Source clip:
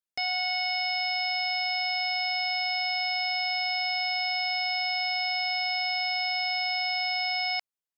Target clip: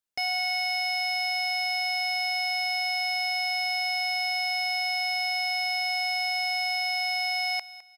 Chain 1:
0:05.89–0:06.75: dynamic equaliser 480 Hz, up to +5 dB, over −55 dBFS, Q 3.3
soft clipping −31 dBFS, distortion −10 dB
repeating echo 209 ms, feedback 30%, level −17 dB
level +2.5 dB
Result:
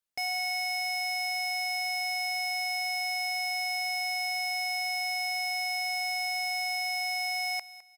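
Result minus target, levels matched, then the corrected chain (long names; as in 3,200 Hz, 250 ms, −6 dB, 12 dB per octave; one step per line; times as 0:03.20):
soft clipping: distortion +8 dB
0:05.89–0:06.75: dynamic equaliser 480 Hz, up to +5 dB, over −55 dBFS, Q 3.3
soft clipping −23.5 dBFS, distortion −18 dB
repeating echo 209 ms, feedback 30%, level −17 dB
level +2.5 dB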